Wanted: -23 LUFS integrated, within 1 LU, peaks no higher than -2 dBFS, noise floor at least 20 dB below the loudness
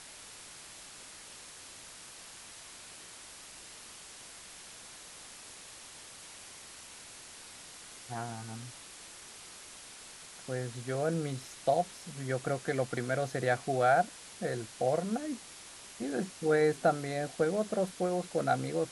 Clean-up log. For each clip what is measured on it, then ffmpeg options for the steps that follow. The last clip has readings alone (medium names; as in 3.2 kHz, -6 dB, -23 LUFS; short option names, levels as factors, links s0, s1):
noise floor -50 dBFS; noise floor target -53 dBFS; loudness -32.5 LUFS; peak level -14.5 dBFS; loudness target -23.0 LUFS
-> -af "afftdn=nr=6:nf=-50"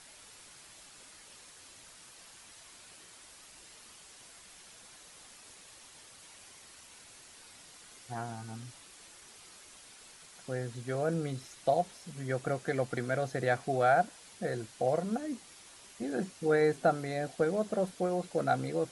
noise floor -55 dBFS; loudness -32.5 LUFS; peak level -14.5 dBFS; loudness target -23.0 LUFS
-> -af "volume=2.99"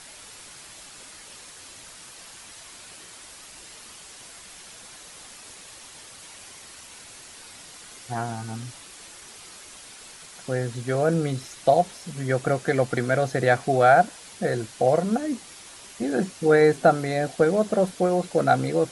loudness -23.0 LUFS; peak level -5.0 dBFS; noise floor -45 dBFS